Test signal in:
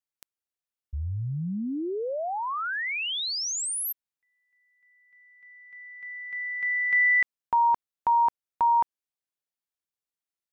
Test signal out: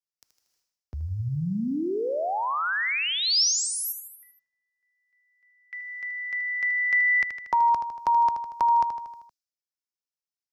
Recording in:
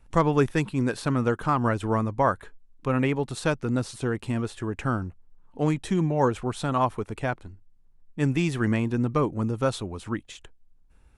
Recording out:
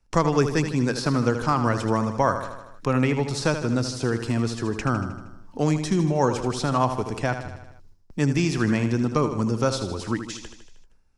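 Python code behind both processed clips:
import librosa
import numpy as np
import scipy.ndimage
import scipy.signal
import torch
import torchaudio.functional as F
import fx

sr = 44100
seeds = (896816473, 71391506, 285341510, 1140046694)

y = fx.gate_hold(x, sr, open_db=-44.0, close_db=-50.0, hold_ms=318.0, range_db=-24, attack_ms=0.9, release_ms=199.0)
y = fx.curve_eq(y, sr, hz=(3600.0, 5200.0, 8800.0), db=(0, 13, 0))
y = fx.echo_feedback(y, sr, ms=78, feedback_pct=53, wet_db=-9.5)
y = fx.band_squash(y, sr, depth_pct=40)
y = F.gain(torch.from_numpy(y), 1.5).numpy()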